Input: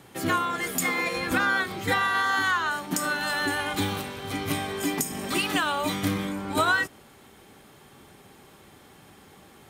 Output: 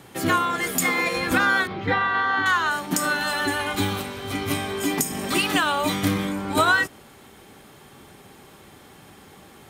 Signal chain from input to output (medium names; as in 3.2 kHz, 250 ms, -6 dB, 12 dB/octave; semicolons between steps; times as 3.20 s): 1.67–2.46 s: distance through air 290 m; 3.23–4.91 s: comb of notches 160 Hz; trim +4 dB